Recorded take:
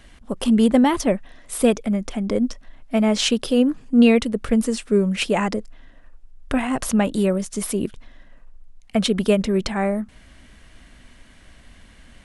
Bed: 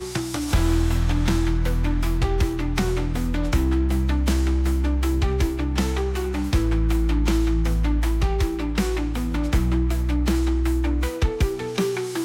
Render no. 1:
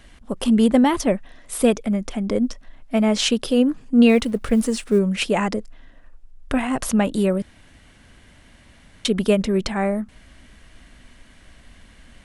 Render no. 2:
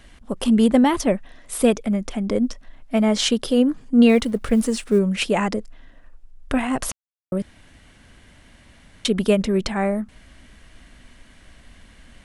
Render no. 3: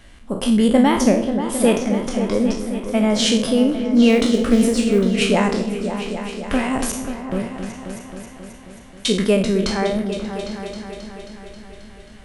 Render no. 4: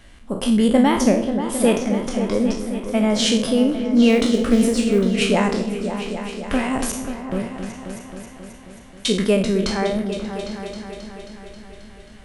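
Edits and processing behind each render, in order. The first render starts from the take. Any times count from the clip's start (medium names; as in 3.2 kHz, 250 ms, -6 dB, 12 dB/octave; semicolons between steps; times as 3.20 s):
4.09–4.99 s: companding laws mixed up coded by mu; 7.42–9.05 s: room tone
2.98–4.36 s: band-stop 2.6 kHz; 6.92–7.32 s: mute
spectral sustain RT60 0.50 s; delay with an opening low-pass 268 ms, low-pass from 400 Hz, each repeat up 2 oct, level -6 dB
trim -1 dB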